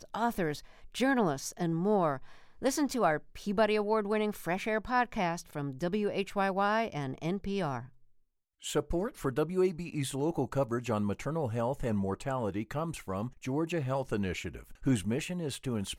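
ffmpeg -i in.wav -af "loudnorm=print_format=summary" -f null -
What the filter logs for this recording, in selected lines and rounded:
Input Integrated:    -32.6 LUFS
Input True Peak:     -14.5 dBTP
Input LRA:             3.2 LU
Input Threshold:     -42.7 LUFS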